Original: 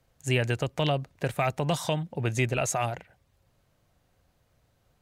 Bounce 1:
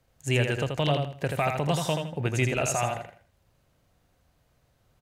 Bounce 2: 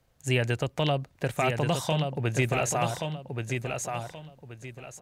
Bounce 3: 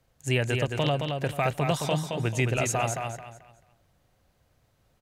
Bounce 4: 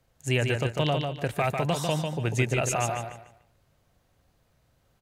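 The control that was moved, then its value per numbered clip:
repeating echo, delay time: 81, 1,128, 219, 147 milliseconds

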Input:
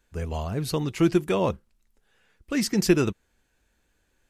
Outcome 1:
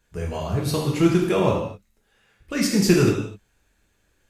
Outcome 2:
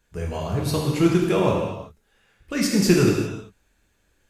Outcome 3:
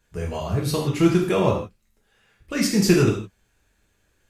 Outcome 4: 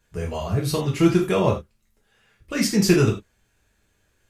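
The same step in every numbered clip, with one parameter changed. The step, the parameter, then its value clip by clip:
reverb whose tail is shaped and stops, gate: 280, 420, 190, 120 milliseconds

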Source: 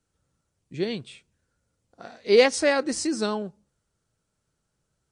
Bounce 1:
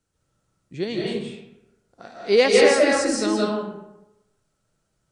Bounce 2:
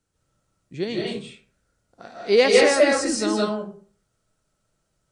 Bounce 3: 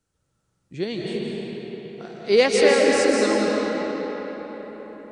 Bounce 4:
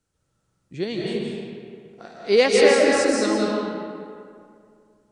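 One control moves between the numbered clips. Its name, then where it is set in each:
comb and all-pass reverb, RT60: 0.92, 0.44, 5.1, 2.3 seconds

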